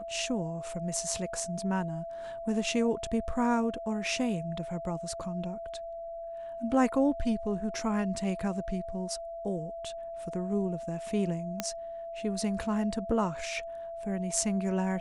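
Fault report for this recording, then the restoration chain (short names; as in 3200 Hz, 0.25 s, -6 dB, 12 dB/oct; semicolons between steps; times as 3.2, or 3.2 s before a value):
tone 670 Hz -37 dBFS
11.6 pop -14 dBFS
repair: de-click; notch 670 Hz, Q 30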